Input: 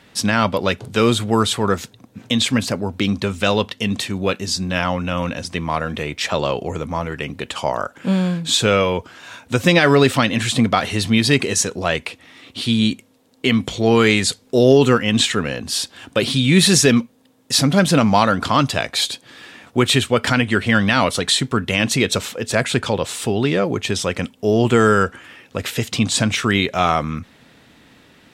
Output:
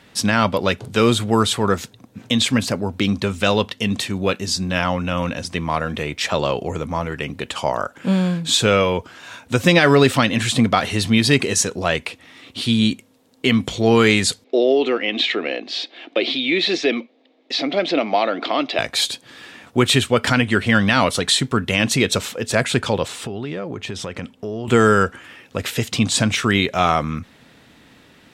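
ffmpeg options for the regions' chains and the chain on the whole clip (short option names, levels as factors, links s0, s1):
-filter_complex "[0:a]asettb=1/sr,asplit=3[s0][s1][s2];[s0]atrim=end=14.444[s3];[s1]atrim=start=14.44:end=18.79,asetpts=PTS-STARTPTS,afade=t=in:d=0.004:c=qsin,afade=t=out:st=4.346:d=0.004:c=qsin,acompressor=threshold=0.158:ratio=2:attack=3.2:release=140:knee=1:detection=peak,highpass=f=290:w=0.5412,highpass=f=290:w=1.3066,equalizer=f=330:t=q:w=4:g=7,equalizer=f=670:t=q:w=4:g=7,equalizer=f=1000:t=q:w=4:g=-6,equalizer=f=1500:t=q:w=4:g=-7,equalizer=f=2200:t=q:w=4:g=7,equalizer=f=3800:t=q:w=4:g=3,lowpass=f=4200:w=0.5412,lowpass=f=4200:w=1.3066[s4];[s2]atrim=start=18.786[s5];[s3][s4]acrossfade=d=0.004:c1=hsin:c2=qsin[s6];[s6][s5]acrossfade=d=0.004:c1=qsin:c2=hsin,asettb=1/sr,asplit=3[s7][s8][s9];[s7]atrim=end=23.084[s10];[s8]atrim=start=23.08:end=24.68,asetpts=PTS-STARTPTS,afade=t=in:d=0.004:c=qsin,afade=t=out:st=1.596:d=0.004:c=qsin,aemphasis=mode=reproduction:type=cd,acompressor=threshold=0.0562:ratio=4:attack=3.2:release=140:knee=1:detection=peak[s11];[s9]atrim=start=24.676[s12];[s10][s11]acrossfade=d=0.004:c1=hsin:c2=qsin[s13];[s13][s12]acrossfade=d=0.004:c1=qsin:c2=hsin"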